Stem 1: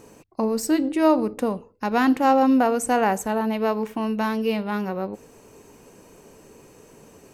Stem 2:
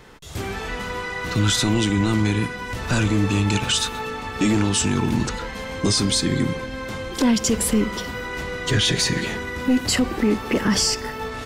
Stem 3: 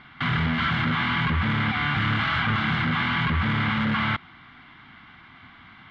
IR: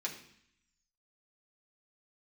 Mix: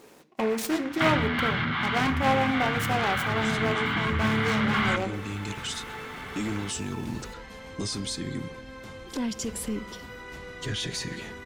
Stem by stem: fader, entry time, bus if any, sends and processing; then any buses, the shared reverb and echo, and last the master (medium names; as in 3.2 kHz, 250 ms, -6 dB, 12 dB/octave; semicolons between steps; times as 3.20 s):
-6.0 dB, 0.00 s, send -4 dB, high-pass 250 Hz 6 dB/octave; delay time shaken by noise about 1.3 kHz, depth 0.075 ms
-16.0 dB, 1.95 s, no send, none
+1.5 dB, 0.80 s, send -10.5 dB, compression 3:1, threshold -26 dBFS, peak gain reduction 5 dB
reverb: on, RT60 0.65 s, pre-delay 3 ms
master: gain riding within 4 dB 2 s